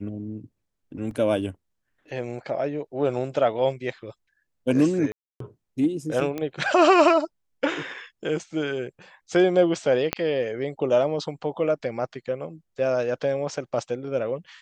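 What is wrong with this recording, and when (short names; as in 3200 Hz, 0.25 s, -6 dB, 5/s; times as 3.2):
1.11 gap 2 ms
5.12–5.4 gap 0.283 s
6.38 pop -17 dBFS
10.13 pop -7 dBFS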